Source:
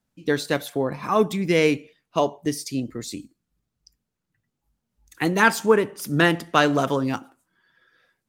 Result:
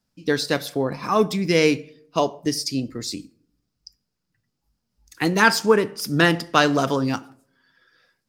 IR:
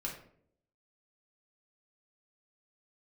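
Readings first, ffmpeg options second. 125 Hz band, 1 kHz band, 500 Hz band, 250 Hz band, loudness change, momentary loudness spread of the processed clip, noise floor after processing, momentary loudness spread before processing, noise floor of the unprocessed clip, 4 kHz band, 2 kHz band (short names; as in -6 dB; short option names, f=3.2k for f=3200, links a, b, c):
+1.5 dB, +1.0 dB, +0.5 dB, +1.0 dB, +1.0 dB, 11 LU, -78 dBFS, 11 LU, -81 dBFS, +4.5 dB, +1.5 dB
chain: -filter_complex "[0:a]equalizer=f=5k:t=o:w=0.39:g=11,asplit=2[a][b];[1:a]atrim=start_sample=2205[c];[b][c]afir=irnorm=-1:irlink=0,volume=-15.5dB[d];[a][d]amix=inputs=2:normalize=0"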